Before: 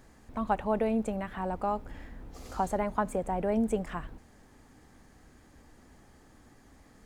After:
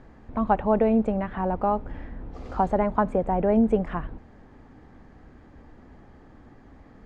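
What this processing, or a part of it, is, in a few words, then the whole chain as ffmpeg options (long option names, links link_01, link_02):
phone in a pocket: -af "lowpass=3900,highshelf=frequency=2100:gain=-11,volume=8dB"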